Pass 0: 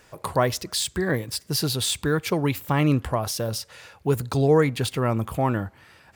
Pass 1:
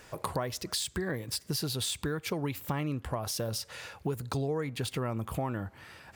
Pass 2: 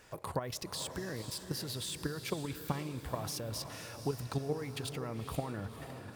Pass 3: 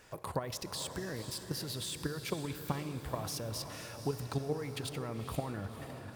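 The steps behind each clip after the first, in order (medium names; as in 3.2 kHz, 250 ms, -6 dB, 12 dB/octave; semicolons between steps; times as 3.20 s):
compression 6:1, threshold -32 dBFS, peak gain reduction 17 dB; trim +1.5 dB
level held to a coarse grid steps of 10 dB; echo that smears into a reverb 502 ms, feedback 49%, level -9 dB
reverberation RT60 3.4 s, pre-delay 48 ms, DRR 14 dB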